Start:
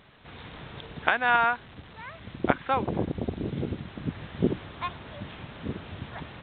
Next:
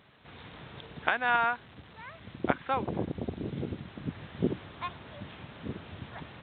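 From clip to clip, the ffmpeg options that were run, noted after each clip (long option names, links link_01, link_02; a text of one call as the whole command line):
ffmpeg -i in.wav -af "highpass=64,volume=-4dB" out.wav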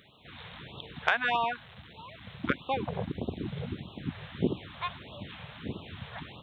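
ffmpeg -i in.wav -af "highshelf=frequency=2900:gain=8,acontrast=30,afftfilt=real='re*(1-between(b*sr/1024,260*pow(1900/260,0.5+0.5*sin(2*PI*1.6*pts/sr))/1.41,260*pow(1900/260,0.5+0.5*sin(2*PI*1.6*pts/sr))*1.41))':imag='im*(1-between(b*sr/1024,260*pow(1900/260,0.5+0.5*sin(2*PI*1.6*pts/sr))/1.41,260*pow(1900/260,0.5+0.5*sin(2*PI*1.6*pts/sr))*1.41))':win_size=1024:overlap=0.75,volume=-4.5dB" out.wav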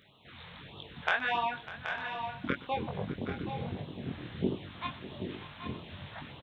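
ffmpeg -i in.wav -filter_complex "[0:a]flanger=delay=20:depth=3.8:speed=1.3,asplit=2[link_01][link_02];[link_02]aecho=0:1:119|599|776|803|820|899:0.106|0.158|0.316|0.237|0.141|0.126[link_03];[link_01][link_03]amix=inputs=2:normalize=0" out.wav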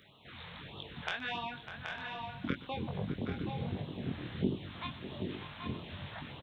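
ffmpeg -i in.wav -filter_complex "[0:a]acrossover=split=320|3000[link_01][link_02][link_03];[link_02]acompressor=threshold=-45dB:ratio=2.5[link_04];[link_01][link_04][link_03]amix=inputs=3:normalize=0,volume=1dB" out.wav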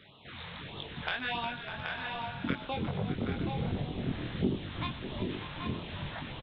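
ffmpeg -i in.wav -filter_complex "[0:a]asplit=2[link_01][link_02];[link_02]asoftclip=type=tanh:threshold=-31dB,volume=-4dB[link_03];[link_01][link_03]amix=inputs=2:normalize=0,asplit=6[link_04][link_05][link_06][link_07][link_08][link_09];[link_05]adelay=358,afreqshift=-70,volume=-11dB[link_10];[link_06]adelay=716,afreqshift=-140,volume=-17dB[link_11];[link_07]adelay=1074,afreqshift=-210,volume=-23dB[link_12];[link_08]adelay=1432,afreqshift=-280,volume=-29.1dB[link_13];[link_09]adelay=1790,afreqshift=-350,volume=-35.1dB[link_14];[link_04][link_10][link_11][link_12][link_13][link_14]amix=inputs=6:normalize=0,aresample=11025,aresample=44100" out.wav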